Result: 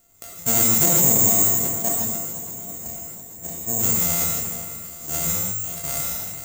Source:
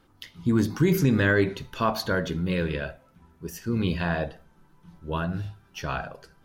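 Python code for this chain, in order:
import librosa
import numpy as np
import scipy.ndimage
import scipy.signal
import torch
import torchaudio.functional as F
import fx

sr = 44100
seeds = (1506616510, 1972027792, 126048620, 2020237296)

p1 = np.r_[np.sort(x[:len(x) // 64 * 64].reshape(-1, 64), axis=1).ravel(), x[len(x) // 64 * 64:]]
p2 = fx.level_steps(p1, sr, step_db=22, at=(1.31, 2.86))
p3 = fx.spec_erase(p2, sr, start_s=0.85, length_s=2.97, low_hz=1100.0, high_hz=5000.0)
p4 = (np.kron(p3[::6], np.eye(6)[0]) * 6)[:len(p3)]
p5 = p4 + fx.echo_swing(p4, sr, ms=827, ratio=1.5, feedback_pct=46, wet_db=-14.0, dry=0)
p6 = fx.rev_gated(p5, sr, seeds[0], gate_ms=180, shape='rising', drr_db=-1.0)
p7 = fx.sustainer(p6, sr, db_per_s=27.0)
y = F.gain(torch.from_numpy(p7), -6.5).numpy()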